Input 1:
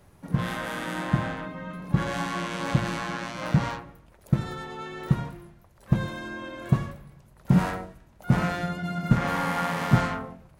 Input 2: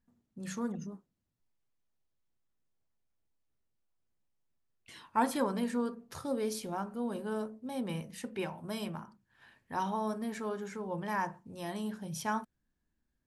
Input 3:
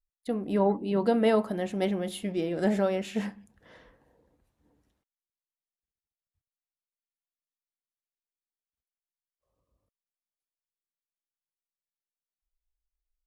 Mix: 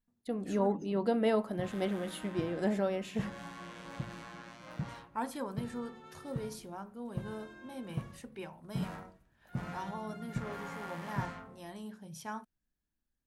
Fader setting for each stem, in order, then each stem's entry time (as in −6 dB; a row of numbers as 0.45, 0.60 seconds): −16.5, −7.5, −5.5 decibels; 1.25, 0.00, 0.00 seconds